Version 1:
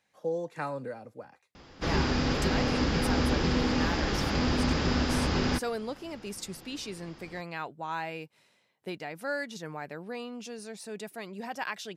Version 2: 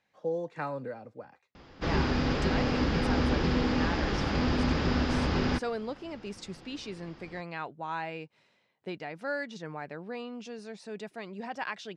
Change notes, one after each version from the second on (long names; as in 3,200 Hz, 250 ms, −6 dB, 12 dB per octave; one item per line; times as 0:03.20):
master: add high-frequency loss of the air 110 metres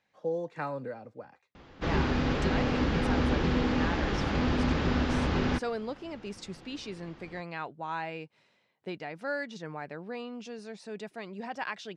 background: add parametric band 5,000 Hz −8.5 dB 0.25 octaves